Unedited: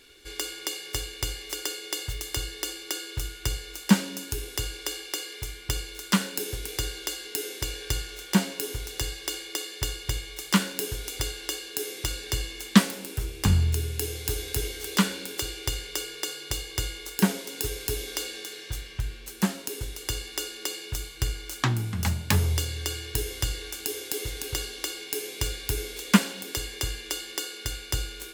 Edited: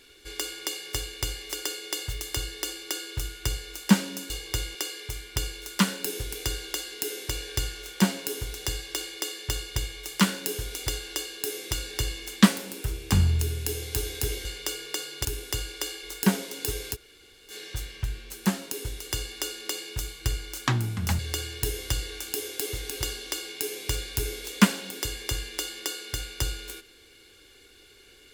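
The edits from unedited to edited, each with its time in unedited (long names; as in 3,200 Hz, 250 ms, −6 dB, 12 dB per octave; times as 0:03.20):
0:04.30–0:05.08: swap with 0:16.54–0:16.99
0:14.78–0:15.74: remove
0:17.90–0:18.47: fill with room tone, crossfade 0.06 s
0:22.15–0:22.71: remove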